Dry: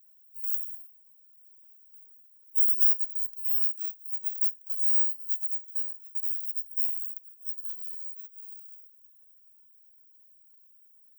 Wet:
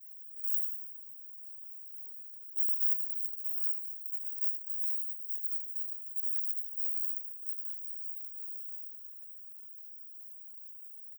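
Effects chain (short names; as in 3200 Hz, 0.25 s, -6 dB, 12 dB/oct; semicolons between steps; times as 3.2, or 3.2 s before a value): per-bin compression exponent 0.2; expander -10 dBFS; echo 78 ms -10.5 dB; gain -8.5 dB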